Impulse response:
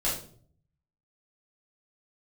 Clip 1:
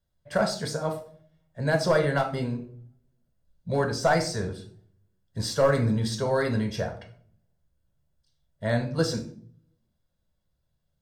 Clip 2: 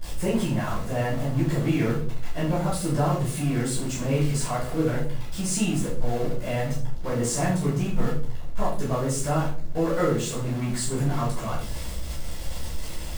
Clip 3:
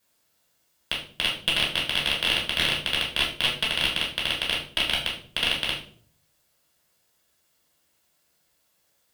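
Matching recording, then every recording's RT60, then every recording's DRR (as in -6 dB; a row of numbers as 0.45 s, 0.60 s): 2; 0.50 s, 0.50 s, 0.50 s; 3.5 dB, -9.0 dB, -4.0 dB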